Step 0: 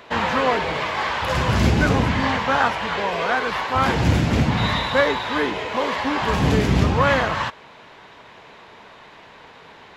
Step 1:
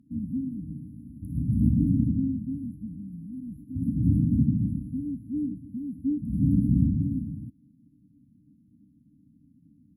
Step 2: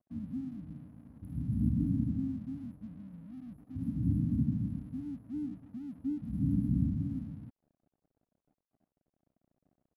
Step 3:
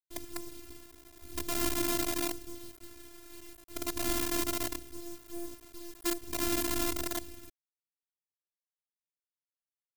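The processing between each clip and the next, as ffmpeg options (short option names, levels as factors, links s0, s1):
-af "highpass=f=160:p=1,aemphasis=mode=reproduction:type=75fm,afftfilt=real='re*(1-between(b*sr/4096,310,10000))':imag='im*(1-between(b*sr/4096,310,10000))':win_size=4096:overlap=0.75"
-af "aeval=exprs='sgn(val(0))*max(abs(val(0))-0.00178,0)':c=same,volume=0.422"
-af "acrusher=bits=6:dc=4:mix=0:aa=0.000001,afftfilt=real='hypot(re,im)*cos(PI*b)':imag='0':win_size=512:overlap=0.75,crystalizer=i=3.5:c=0,volume=1.33"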